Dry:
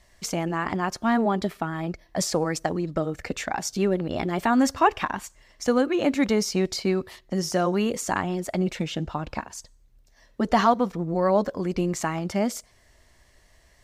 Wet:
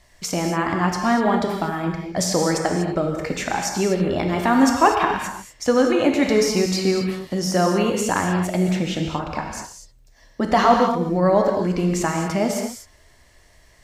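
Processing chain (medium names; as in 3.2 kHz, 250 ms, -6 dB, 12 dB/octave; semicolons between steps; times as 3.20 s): gated-style reverb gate 270 ms flat, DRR 1.5 dB; trim +3 dB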